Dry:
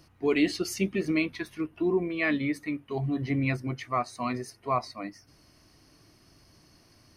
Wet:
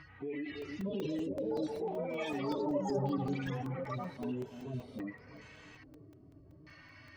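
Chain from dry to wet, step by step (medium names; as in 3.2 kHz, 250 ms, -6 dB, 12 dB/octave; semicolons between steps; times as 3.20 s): harmonic-percussive separation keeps harmonic; thinning echo 317 ms, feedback 41%, high-pass 180 Hz, level -19 dB; in parallel at +0.5 dB: compressor with a negative ratio -36 dBFS; on the sum: peak limiter -26 dBFS, peak gain reduction 11.5 dB; LFO low-pass square 0.6 Hz 420–2000 Hz; ever faster or slower copies 700 ms, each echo +6 st, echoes 3; comb of notches 350 Hz; crackling interface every 0.19 s, samples 128, zero, from 0.62 s; tape noise reduction on one side only encoder only; trim -6.5 dB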